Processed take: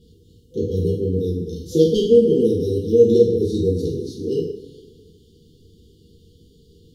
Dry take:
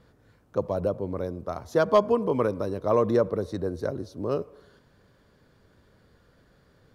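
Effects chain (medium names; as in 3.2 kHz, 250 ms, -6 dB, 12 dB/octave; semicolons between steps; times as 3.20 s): 3.94–4.41 s: bass shelf 130 Hz -10.5 dB; two-slope reverb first 0.54 s, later 2 s, DRR -5 dB; FFT band-reject 500–2800 Hz; trim +4 dB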